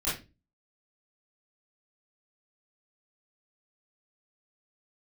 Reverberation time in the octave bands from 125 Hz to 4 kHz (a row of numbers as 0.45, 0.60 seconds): 0.45, 0.45, 0.30, 0.25, 0.25, 0.25 seconds